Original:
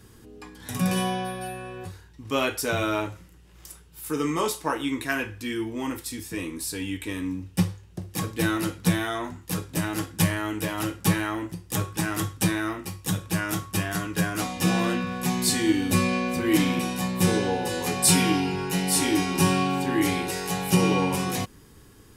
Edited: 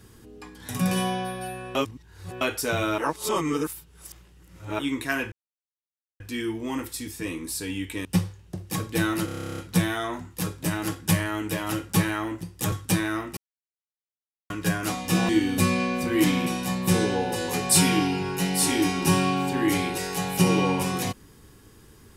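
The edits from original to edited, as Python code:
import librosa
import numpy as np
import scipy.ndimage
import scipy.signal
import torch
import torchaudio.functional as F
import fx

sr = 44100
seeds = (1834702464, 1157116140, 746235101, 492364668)

y = fx.edit(x, sr, fx.reverse_span(start_s=1.75, length_s=0.66),
    fx.reverse_span(start_s=2.98, length_s=1.81),
    fx.insert_silence(at_s=5.32, length_s=0.88),
    fx.cut(start_s=7.17, length_s=0.32),
    fx.stutter(start_s=8.69, slice_s=0.03, count=12),
    fx.cut(start_s=11.83, length_s=0.41),
    fx.silence(start_s=12.89, length_s=1.13),
    fx.cut(start_s=14.81, length_s=0.81), tone=tone)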